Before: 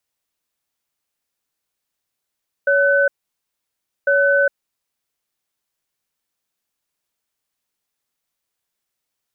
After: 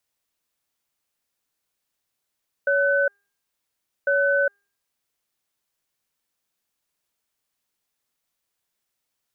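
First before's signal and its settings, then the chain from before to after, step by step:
cadence 562 Hz, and 1510 Hz, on 0.41 s, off 0.99 s, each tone -15 dBFS 2.41 s
limiter -14 dBFS; de-hum 402.2 Hz, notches 27

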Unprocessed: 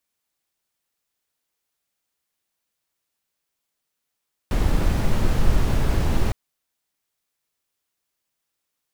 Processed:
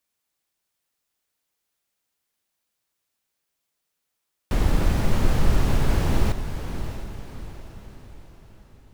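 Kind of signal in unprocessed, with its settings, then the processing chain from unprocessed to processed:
noise brown, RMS -17.5 dBFS 1.81 s
on a send: diffused feedback echo 0.653 s, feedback 45%, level -9.5 dB

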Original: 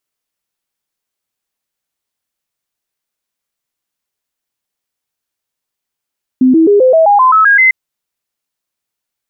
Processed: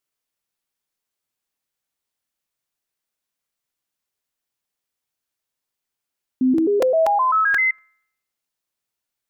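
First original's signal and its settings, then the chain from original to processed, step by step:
stepped sine 257 Hz up, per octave 3, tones 10, 0.13 s, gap 0.00 s -4 dBFS
limiter -10.5 dBFS; resonator 130 Hz, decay 0.72 s, harmonics all, mix 40%; crackling interface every 0.24 s, samples 128, repeat, from 0.58

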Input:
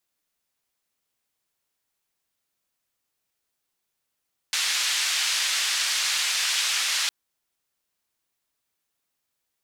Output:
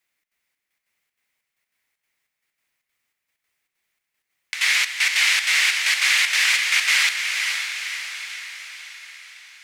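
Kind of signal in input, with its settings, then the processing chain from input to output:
noise band 1800–5700 Hz, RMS -25 dBFS 2.56 s
bell 2100 Hz +14.5 dB 0.76 oct; step gate "xxx.xxx..x." 192 bpm -12 dB; diffused feedback echo 0.509 s, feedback 54%, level -5 dB

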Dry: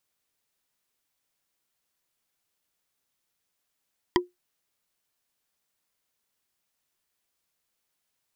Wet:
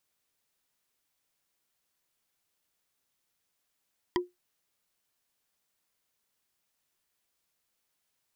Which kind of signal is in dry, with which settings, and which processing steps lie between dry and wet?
wood hit bar, lowest mode 357 Hz, decay 0.17 s, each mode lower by 1 dB, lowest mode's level -15 dB
limiter -16 dBFS

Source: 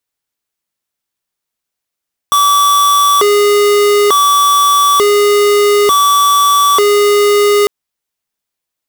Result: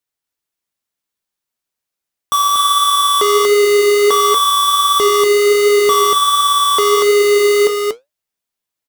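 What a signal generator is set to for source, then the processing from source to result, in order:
siren hi-lo 411–1150 Hz 0.56/s square -9 dBFS 5.35 s
flange 1.4 Hz, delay 6.4 ms, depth 5.5 ms, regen +73%; echo 0.238 s -3.5 dB

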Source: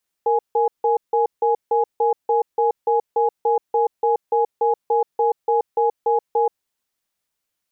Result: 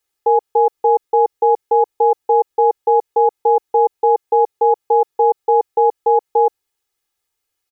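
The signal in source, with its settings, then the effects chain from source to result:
cadence 464 Hz, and 835 Hz, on 0.13 s, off 0.16 s, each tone -17.5 dBFS 6.30 s
comb 2.4 ms, depth 96%

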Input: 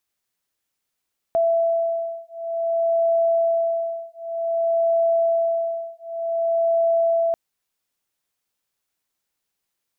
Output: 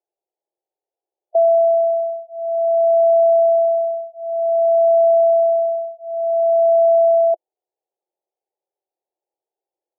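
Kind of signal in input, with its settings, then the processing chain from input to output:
beating tones 667 Hz, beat 0.54 Hz, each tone -21.5 dBFS 5.99 s
elliptic band-pass 350–830 Hz; harmonic-percussive split harmonic +7 dB

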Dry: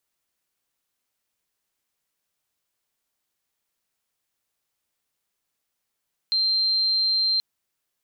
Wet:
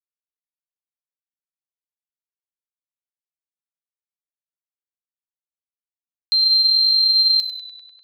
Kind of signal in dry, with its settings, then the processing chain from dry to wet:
tone sine 4150 Hz -19 dBFS 1.08 s
level-crossing sampler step -45.5 dBFS; high shelf 3900 Hz +11 dB; tape echo 97 ms, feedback 83%, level -7 dB, low-pass 4200 Hz

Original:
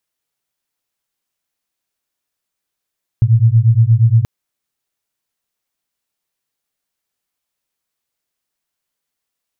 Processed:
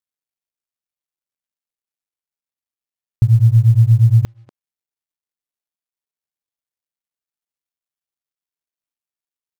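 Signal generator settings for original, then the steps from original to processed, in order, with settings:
beating tones 110 Hz, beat 8.5 Hz, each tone -10.5 dBFS 1.03 s
G.711 law mismatch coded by A; speakerphone echo 0.24 s, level -17 dB

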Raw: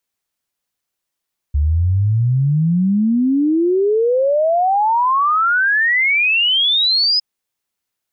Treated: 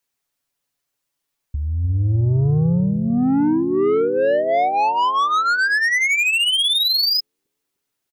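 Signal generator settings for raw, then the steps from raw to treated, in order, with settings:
log sweep 70 Hz -> 5100 Hz 5.66 s -12 dBFS
comb 7.1 ms, depth 58%; soft clip -15 dBFS; analogue delay 0.301 s, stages 1024, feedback 54%, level -8.5 dB

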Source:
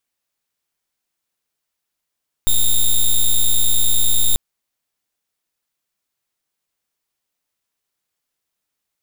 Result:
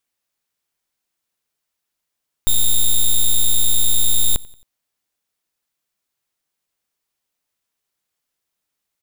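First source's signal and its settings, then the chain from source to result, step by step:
pulse 3670 Hz, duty 6% -12.5 dBFS 1.89 s
feedback echo 90 ms, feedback 46%, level -23 dB

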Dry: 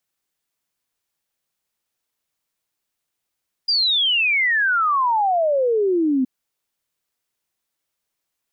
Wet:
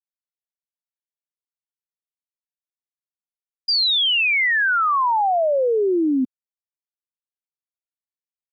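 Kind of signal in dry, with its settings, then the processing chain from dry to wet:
log sweep 4900 Hz -> 250 Hz 2.57 s -15.5 dBFS
sample gate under -51.5 dBFS; HPF 120 Hz

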